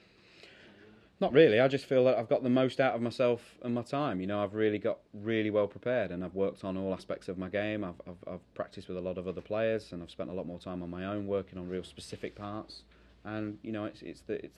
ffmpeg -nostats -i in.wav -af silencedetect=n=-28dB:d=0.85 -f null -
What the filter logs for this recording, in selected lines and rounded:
silence_start: 0.00
silence_end: 1.22 | silence_duration: 1.22